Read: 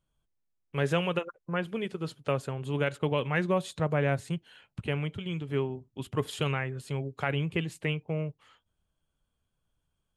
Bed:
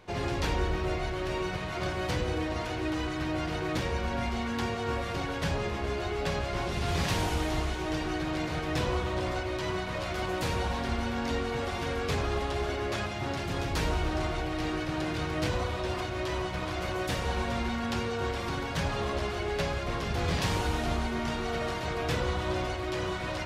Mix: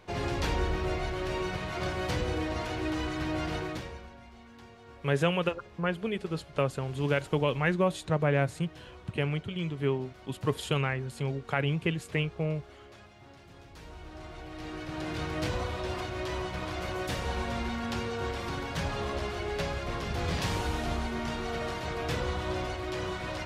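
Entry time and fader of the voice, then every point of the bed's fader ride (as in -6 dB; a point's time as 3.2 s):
4.30 s, +1.0 dB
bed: 3.57 s -0.5 dB
4.19 s -20 dB
13.75 s -20 dB
15.19 s -2 dB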